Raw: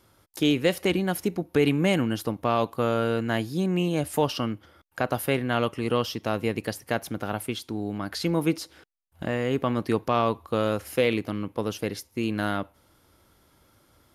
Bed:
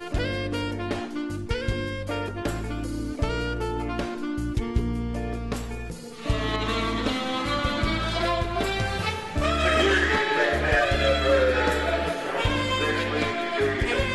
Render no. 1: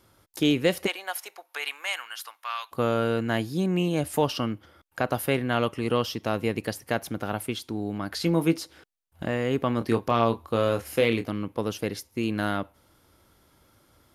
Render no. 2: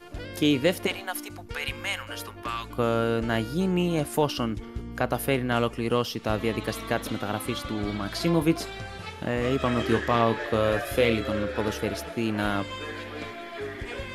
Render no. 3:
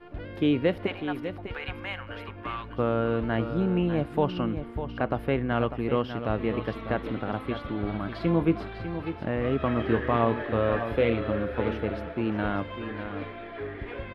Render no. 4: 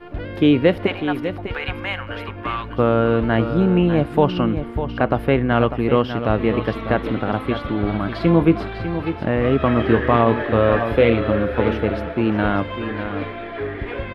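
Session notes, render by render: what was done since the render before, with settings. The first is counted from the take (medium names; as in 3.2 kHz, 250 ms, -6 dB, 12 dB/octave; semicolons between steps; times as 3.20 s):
0.86–2.71 s: high-pass 630 Hz -> 1.3 kHz 24 dB/octave; 8.19–8.61 s: doubling 18 ms -10.5 dB; 9.78–11.28 s: doubling 26 ms -8.5 dB
add bed -11 dB
distance through air 450 m; delay 599 ms -10 dB
trim +9 dB; peak limiter -3 dBFS, peak gain reduction 3 dB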